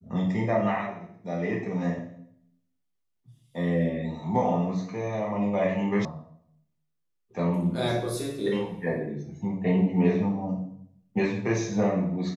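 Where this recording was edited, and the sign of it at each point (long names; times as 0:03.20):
0:06.05: cut off before it has died away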